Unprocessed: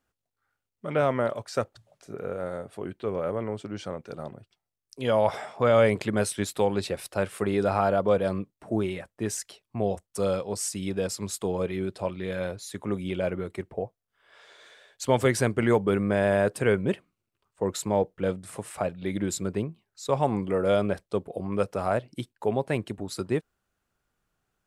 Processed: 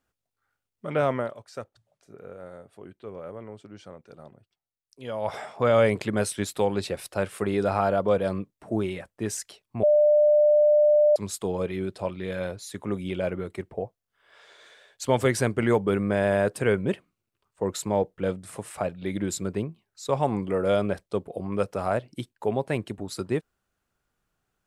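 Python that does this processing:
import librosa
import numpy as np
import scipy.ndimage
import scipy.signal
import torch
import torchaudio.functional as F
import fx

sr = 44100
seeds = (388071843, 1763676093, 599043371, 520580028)

y = fx.edit(x, sr, fx.fade_down_up(start_s=1.14, length_s=4.24, db=-9.5, fade_s=0.18),
    fx.bleep(start_s=9.83, length_s=1.33, hz=597.0, db=-15.0), tone=tone)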